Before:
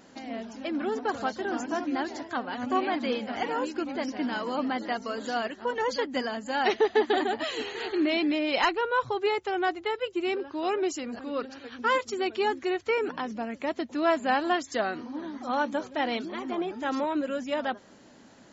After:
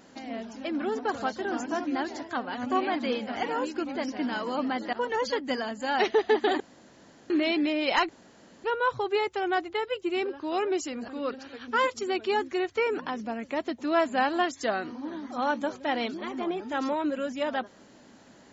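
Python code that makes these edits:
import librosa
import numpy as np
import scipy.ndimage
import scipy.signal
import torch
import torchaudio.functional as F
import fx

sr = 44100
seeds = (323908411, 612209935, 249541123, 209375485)

y = fx.edit(x, sr, fx.cut(start_s=4.93, length_s=0.66),
    fx.room_tone_fill(start_s=7.26, length_s=0.7),
    fx.insert_room_tone(at_s=8.75, length_s=0.55), tone=tone)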